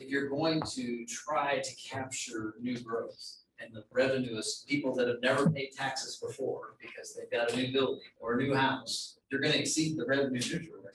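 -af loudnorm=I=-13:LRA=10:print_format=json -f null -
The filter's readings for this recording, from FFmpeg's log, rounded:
"input_i" : "-32.3",
"input_tp" : "-15.5",
"input_lra" : "3.4",
"input_thresh" : "-42.6",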